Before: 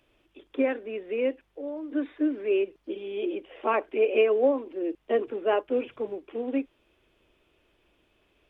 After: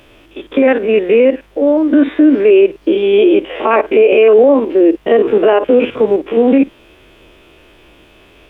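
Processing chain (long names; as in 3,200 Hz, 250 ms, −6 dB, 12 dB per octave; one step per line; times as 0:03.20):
spectrum averaged block by block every 50 ms
boost into a limiter +25 dB
level −1 dB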